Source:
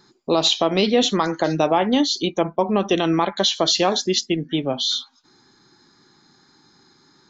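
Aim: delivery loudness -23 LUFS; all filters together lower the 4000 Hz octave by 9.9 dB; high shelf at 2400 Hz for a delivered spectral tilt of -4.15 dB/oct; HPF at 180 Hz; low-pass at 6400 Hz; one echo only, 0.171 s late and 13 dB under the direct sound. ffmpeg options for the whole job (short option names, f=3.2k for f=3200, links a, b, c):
-af "highpass=180,lowpass=6.4k,highshelf=f=2.4k:g=-4.5,equalizer=f=4k:t=o:g=-7.5,aecho=1:1:171:0.224,volume=-1dB"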